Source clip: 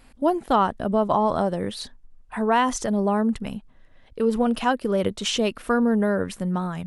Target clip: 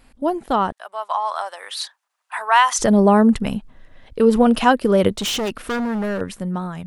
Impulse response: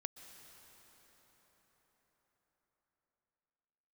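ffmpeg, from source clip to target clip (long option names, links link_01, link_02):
-filter_complex "[0:a]asettb=1/sr,asplit=3[link_01][link_02][link_03];[link_01]atrim=end=0.724[link_04];[link_02]atrim=start=0.72:end=2.79,asetpts=PTS-STARTPTS,afade=type=in:duration=0.004:curve=qsin,afade=type=out:start_time=2.066:duration=0.004:curve=qsin,highpass=frequency=870:width=0.5412,highpass=frequency=870:width=1.3066[link_05];[link_03]atrim=start=2.786[link_06];[link_04][link_05]acrossfade=duration=0.004:curve1=hsin:curve2=qsin[link_07];[link_07][link_06]acrossfade=duration=0.004:curve1=qsin:curve2=hsin,dynaudnorm=framelen=210:gausssize=13:maxgain=11.5dB,asettb=1/sr,asplit=3[link_08][link_09][link_10];[link_08]atrim=end=5.124[link_11];[link_09]atrim=start=5.12:end=6.21,asetpts=PTS-STARTPTS,afade=type=in:duration=0.004:curve=qsin,afade=type=out:start_time=1.086:duration=0.004:curve=qsin,volume=20.5dB,asoftclip=hard,volume=-20.5dB[link_12];[link_10]atrim=start=6.206[link_13];[link_11][link_12]acrossfade=duration=0.004:curve1=hsin:curve2=qsin[link_14];[link_14][link_13]acrossfade=duration=0.004:curve1=qsin:curve2=hsin"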